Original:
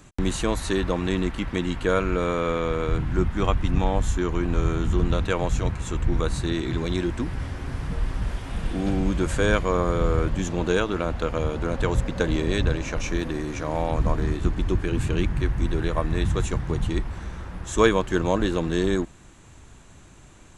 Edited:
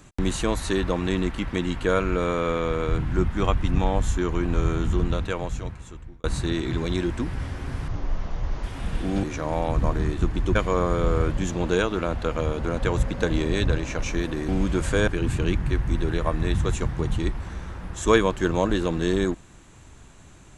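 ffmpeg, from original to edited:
-filter_complex "[0:a]asplit=8[s0][s1][s2][s3][s4][s5][s6][s7];[s0]atrim=end=6.24,asetpts=PTS-STARTPTS,afade=t=out:st=4.82:d=1.42[s8];[s1]atrim=start=6.24:end=7.884,asetpts=PTS-STARTPTS,afade=t=in:d=0.004:c=hsin[s9];[s2]atrim=start=7.88:end=8.34,asetpts=PTS-STARTPTS,asetrate=26901,aresample=44100[s10];[s3]atrim=start=8.336:end=8.942[s11];[s4]atrim=start=13.458:end=14.782[s12];[s5]atrim=start=9.528:end=13.462[s13];[s6]atrim=start=8.938:end=9.532[s14];[s7]atrim=start=14.778[s15];[s8][s9]concat=n=2:v=0:a=1[s16];[s16][s10]acrossfade=d=0.004:c1=hsin:c2=hsin[s17];[s17][s11]acrossfade=d=0.004:c1=hsin:c2=hsin[s18];[s18][s12]acrossfade=d=0.004:c1=hsin:c2=hsin[s19];[s19][s13]acrossfade=d=0.004:c1=hsin:c2=hsin[s20];[s20][s14]acrossfade=d=0.004:c1=hsin:c2=hsin[s21];[s21][s15]acrossfade=d=0.004:c1=hsin:c2=hsin"

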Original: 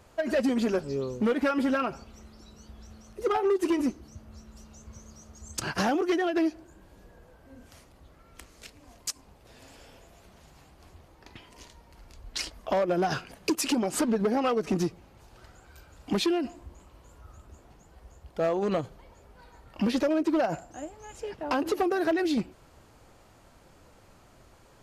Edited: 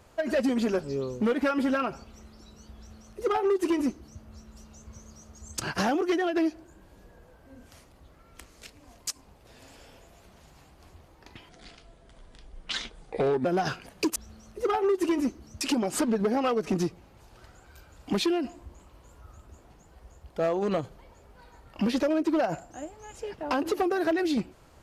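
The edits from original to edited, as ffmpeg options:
-filter_complex "[0:a]asplit=5[s0][s1][s2][s3][s4];[s0]atrim=end=11.494[s5];[s1]atrim=start=11.49:end=12.9,asetpts=PTS-STARTPTS,asetrate=31752,aresample=44100,atrim=end_sample=86362,asetpts=PTS-STARTPTS[s6];[s2]atrim=start=12.896:end=13.612[s7];[s3]atrim=start=2.768:end=4.222[s8];[s4]atrim=start=13.608[s9];[s5][s6]acrossfade=d=0.004:c1=hsin:c2=hsin[s10];[s10][s7]acrossfade=d=0.004:c1=hsin:c2=hsin[s11];[s11][s8]acrossfade=d=0.004:c1=hsin:c2=hsin[s12];[s12][s9]acrossfade=d=0.004:c1=hsin:c2=hsin"

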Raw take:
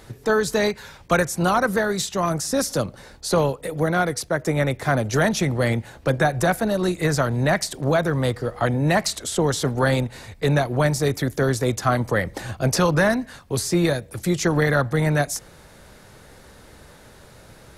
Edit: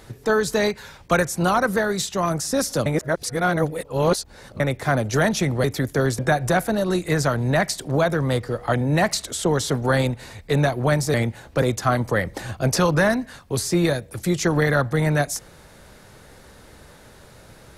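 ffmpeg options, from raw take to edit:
-filter_complex "[0:a]asplit=7[s0][s1][s2][s3][s4][s5][s6];[s0]atrim=end=2.862[s7];[s1]atrim=start=2.858:end=4.602,asetpts=PTS-STARTPTS,areverse[s8];[s2]atrim=start=4.598:end=5.642[s9];[s3]atrim=start=11.068:end=11.622[s10];[s4]atrim=start=6.118:end=11.072[s11];[s5]atrim=start=5.638:end=6.122[s12];[s6]atrim=start=11.618[s13];[s7][s8]acrossfade=d=0.004:c1=hsin:c2=hsin[s14];[s14][s9]acrossfade=d=0.004:c1=hsin:c2=hsin[s15];[s15][s10]acrossfade=d=0.004:c1=hsin:c2=hsin[s16];[s16][s11]acrossfade=d=0.004:c1=hsin:c2=hsin[s17];[s17][s12]acrossfade=d=0.004:c1=hsin:c2=hsin[s18];[s18][s13]acrossfade=d=0.004:c1=hsin:c2=hsin"

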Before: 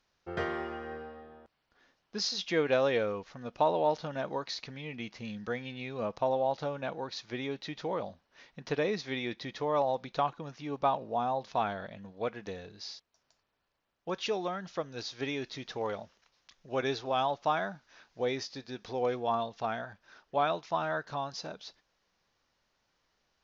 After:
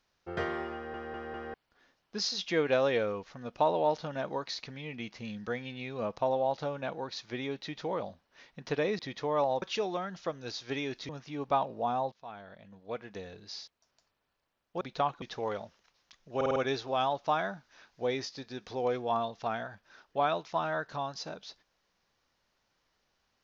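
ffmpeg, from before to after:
-filter_complex "[0:a]asplit=15[s0][s1][s2][s3][s4][s5][s6][s7][s8][s9][s10][s11][s12][s13][s14];[s0]atrim=end=0.942[s15];[s1]atrim=start=0.738:end=0.942[s16];[s2]atrim=start=0.738:end=0.942[s17];[s3]atrim=start=0.738:end=0.942[s18];[s4]atrim=start=1.538:end=8.992[s19];[s5]atrim=start=9.368:end=10.002[s20];[s6]atrim=start=14.128:end=15.602[s21];[s7]atrim=start=10.408:end=11.44,asetpts=PTS-STARTPTS,afade=t=out:st=1.028:d=0.004:c=hsin:silence=0.0707946[s22];[s8]atrim=start=11.44:end=14.132,asetpts=PTS-STARTPTS,afade=t=in:d=1.38:silence=0.0707946[s23];[s9]atrim=start=9.998:end=10.412[s24];[s10]atrim=start=15.598:end=16.792[s25];[s11]atrim=start=16.738:end=16.792[s26];[s12]atrim=start=16.738:end=16.792[s27];[s13]atrim=start=16.738:end=16.792[s28];[s14]atrim=start=16.738[s29];[s15][s16]acrossfade=d=0.004:c1=hsin:c2=hsin[s30];[s30][s17]acrossfade=d=0.004:c1=hsin:c2=hsin[s31];[s31][s18]acrossfade=d=0.004:c1=hsin:c2=hsin[s32];[s32][s19]acrossfade=d=0.004:c1=hsin:c2=hsin[s33];[s33][s20]acrossfade=d=0.004:c1=hsin:c2=hsin[s34];[s34][s21]acrossfade=d=0.004:c1=hsin:c2=hsin[s35];[s22][s23]concat=n=2:v=0:a=1[s36];[s35][s36]acrossfade=d=0.004:c1=hsin:c2=hsin[s37];[s37][s24]acrossfade=d=0.004:c1=hsin:c2=hsin[s38];[s38][s25]acrossfade=d=0.004:c1=hsin:c2=hsin[s39];[s39][s26]acrossfade=d=0.004:c1=hsin:c2=hsin[s40];[s40][s27]acrossfade=d=0.004:c1=hsin:c2=hsin[s41];[s41][s28]acrossfade=d=0.004:c1=hsin:c2=hsin[s42];[s42][s29]acrossfade=d=0.004:c1=hsin:c2=hsin"

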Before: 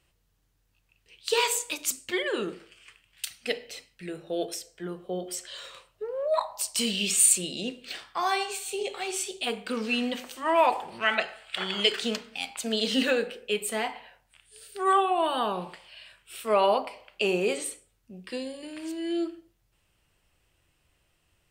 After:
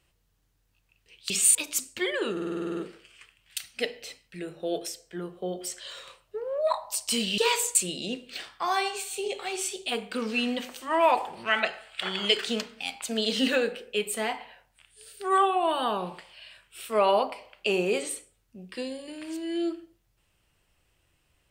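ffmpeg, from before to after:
-filter_complex "[0:a]asplit=14[s0][s1][s2][s3][s4][s5][s6][s7][s8][s9][s10][s11][s12][s13];[s0]atrim=end=1.302[s14];[s1]atrim=start=7.048:end=7.302[s15];[s2]atrim=start=1.668:end=2.492[s16];[s3]atrim=start=2.438:end=2.492[s17];[s4]atrim=start=2.438:end=2.492[s18];[s5]atrim=start=2.438:end=2.492[s19];[s6]atrim=start=2.438:end=2.492[s20];[s7]atrim=start=2.438:end=2.492[s21];[s8]atrim=start=2.438:end=2.492[s22];[s9]atrim=start=2.438:end=2.492[s23];[s10]atrim=start=2.438:end=2.492[s24];[s11]atrim=start=2.438:end=7.052[s25];[s12]atrim=start=1.298:end=1.672[s26];[s13]atrim=start=7.298[s27];[s14][s15]acrossfade=d=0.004:c1=hsin:c2=hsin[s28];[s28][s16]acrossfade=d=0.004:c1=hsin:c2=hsin[s29];[s29][s17]acrossfade=d=0.004:c1=hsin:c2=hsin[s30];[s30][s18]acrossfade=d=0.004:c1=hsin:c2=hsin[s31];[s31][s19]acrossfade=d=0.004:c1=hsin:c2=hsin[s32];[s32][s20]acrossfade=d=0.004:c1=hsin:c2=hsin[s33];[s33][s21]acrossfade=d=0.004:c1=hsin:c2=hsin[s34];[s34][s22]acrossfade=d=0.004:c1=hsin:c2=hsin[s35];[s35][s23]acrossfade=d=0.004:c1=hsin:c2=hsin[s36];[s36][s24]acrossfade=d=0.004:c1=hsin:c2=hsin[s37];[s37][s25]acrossfade=d=0.004:c1=hsin:c2=hsin[s38];[s38][s26]acrossfade=d=0.004:c1=hsin:c2=hsin[s39];[s39][s27]acrossfade=d=0.004:c1=hsin:c2=hsin"

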